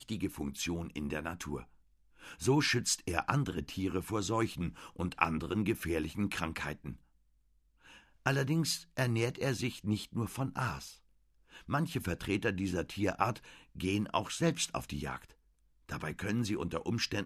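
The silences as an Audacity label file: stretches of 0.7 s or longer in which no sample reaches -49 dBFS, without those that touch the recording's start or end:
6.960000	7.850000	silence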